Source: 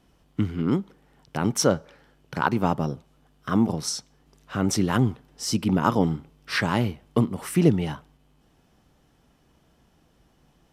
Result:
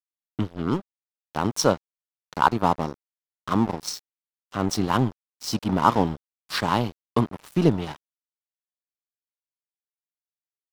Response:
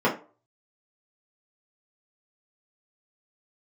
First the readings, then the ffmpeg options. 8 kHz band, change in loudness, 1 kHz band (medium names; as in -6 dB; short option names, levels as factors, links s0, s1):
-3.0 dB, 0.0 dB, +5.0 dB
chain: -af "equalizer=f=1000:t=o:w=1:g=9,equalizer=f=2000:t=o:w=1:g=-7,equalizer=f=4000:t=o:w=1:g=8,equalizer=f=8000:t=o:w=1:g=-3,aeval=exprs='sgn(val(0))*max(abs(val(0))-0.0299,0)':c=same"